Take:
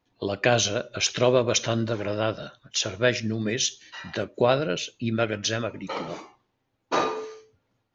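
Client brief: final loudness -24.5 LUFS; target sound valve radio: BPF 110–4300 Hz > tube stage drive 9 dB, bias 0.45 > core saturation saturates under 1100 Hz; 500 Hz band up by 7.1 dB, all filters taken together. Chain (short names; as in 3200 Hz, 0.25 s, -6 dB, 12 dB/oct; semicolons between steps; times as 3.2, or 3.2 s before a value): BPF 110–4300 Hz; bell 500 Hz +8.5 dB; tube stage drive 9 dB, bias 0.45; core saturation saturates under 1100 Hz; gain +4 dB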